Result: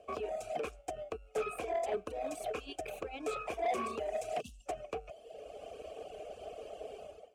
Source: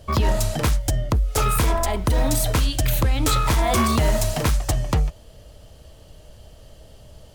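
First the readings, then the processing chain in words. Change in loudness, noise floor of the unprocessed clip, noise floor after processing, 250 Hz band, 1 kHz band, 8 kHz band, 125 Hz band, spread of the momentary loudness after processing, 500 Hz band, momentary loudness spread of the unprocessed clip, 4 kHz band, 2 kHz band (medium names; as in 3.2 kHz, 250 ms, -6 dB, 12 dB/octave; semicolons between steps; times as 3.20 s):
-18.0 dB, -47 dBFS, -59 dBFS, -21.5 dB, -13.0 dB, -25.0 dB, -35.5 dB, 12 LU, -8.5 dB, 4 LU, -22.0 dB, -16.0 dB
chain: level rider gain up to 15 dB; in parallel at -6 dB: sample-and-hold 32×; on the sum: time-frequency box 4.41–4.66 s, 270–2600 Hz -29 dB; graphic EQ 125/1000/2000/4000/8000 Hz -12/-12/+3/-9/+7 dB; reverse; compression 6:1, threshold -20 dBFS, peak gain reduction 15.5 dB; reverse; vowel filter a; peaking EQ 430 Hz +12.5 dB 0.28 oct; reverb removal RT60 1.1 s; saturation -33 dBFS, distortion -13 dB; trim +5.5 dB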